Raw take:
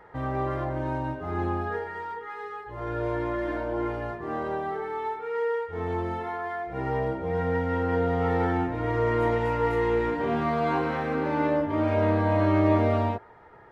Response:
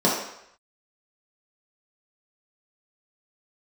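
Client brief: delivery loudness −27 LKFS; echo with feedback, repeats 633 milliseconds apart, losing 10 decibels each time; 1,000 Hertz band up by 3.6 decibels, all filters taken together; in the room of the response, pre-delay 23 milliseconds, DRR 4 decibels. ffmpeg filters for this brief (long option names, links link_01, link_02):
-filter_complex "[0:a]equalizer=frequency=1000:width_type=o:gain=4.5,aecho=1:1:633|1266|1899|2532:0.316|0.101|0.0324|0.0104,asplit=2[link_01][link_02];[1:a]atrim=start_sample=2205,adelay=23[link_03];[link_02][link_03]afir=irnorm=-1:irlink=0,volume=-22dB[link_04];[link_01][link_04]amix=inputs=2:normalize=0,volume=-4dB"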